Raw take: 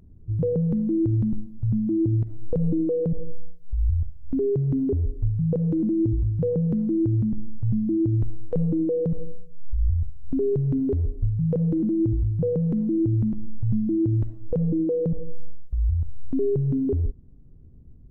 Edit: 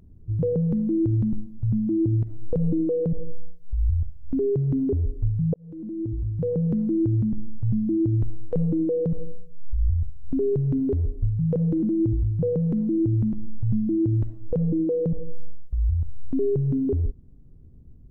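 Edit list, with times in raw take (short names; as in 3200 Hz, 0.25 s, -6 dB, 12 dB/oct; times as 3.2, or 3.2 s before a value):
5.54–6.67 fade in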